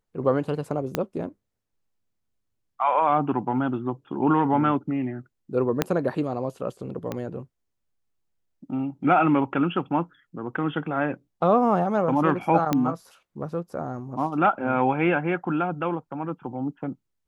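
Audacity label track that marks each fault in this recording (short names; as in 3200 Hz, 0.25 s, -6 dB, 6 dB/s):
0.950000	0.950000	pop -9 dBFS
5.820000	5.820000	pop -6 dBFS
7.120000	7.120000	pop -16 dBFS
12.730000	12.730000	pop -9 dBFS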